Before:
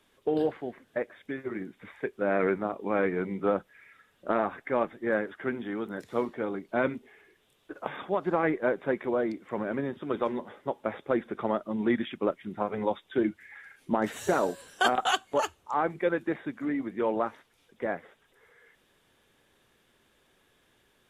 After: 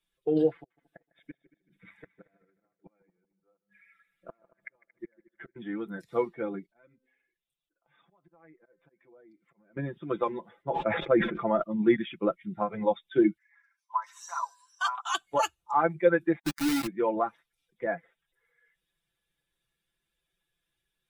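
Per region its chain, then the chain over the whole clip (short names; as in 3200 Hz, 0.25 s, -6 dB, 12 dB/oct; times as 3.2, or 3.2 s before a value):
0.55–5.56 notches 50/100/150/200/250 Hz + flipped gate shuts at -27 dBFS, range -33 dB + multi-head echo 76 ms, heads second and third, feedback 56%, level -14.5 dB
6.66–9.77 auto swell 0.277 s + resonator 260 Hz, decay 0.85 s, mix 50% + compressor 2.5:1, threshold -52 dBFS
10.63–11.63 LPF 3400 Hz + sustainer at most 43 dB/s
13.38–15.15 ladder high-pass 970 Hz, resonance 80% + bell 5700 Hz +12.5 dB 0.66 oct
16.39–16.87 compressor 12:1, threshold -34 dBFS + companded quantiser 2-bit
whole clip: per-bin expansion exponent 1.5; comb 5.9 ms, depth 69%; gain +3 dB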